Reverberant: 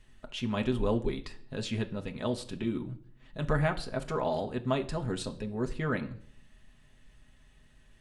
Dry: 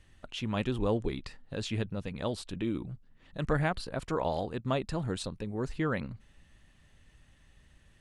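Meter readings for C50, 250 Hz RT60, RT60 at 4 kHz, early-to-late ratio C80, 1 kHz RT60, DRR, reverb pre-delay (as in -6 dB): 16.0 dB, 0.70 s, 0.50 s, 20.0 dB, 0.50 s, 4.0 dB, 5 ms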